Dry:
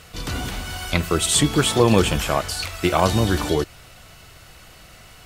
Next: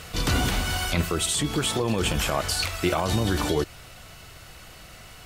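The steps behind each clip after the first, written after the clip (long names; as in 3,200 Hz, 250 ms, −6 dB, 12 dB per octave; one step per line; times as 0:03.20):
brickwall limiter −13 dBFS, peak gain reduction 11 dB
speech leveller 0.5 s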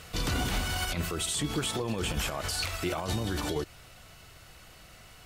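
brickwall limiter −20.5 dBFS, peak gain reduction 9 dB
expander for the loud parts 1.5 to 1, over −40 dBFS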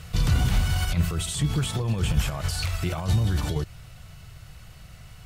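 low shelf with overshoot 200 Hz +10 dB, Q 1.5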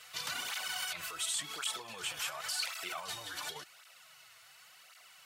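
high-pass filter 980 Hz 12 dB per octave
through-zero flanger with one copy inverted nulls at 0.91 Hz, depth 5.5 ms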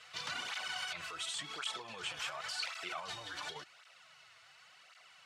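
high-frequency loss of the air 88 metres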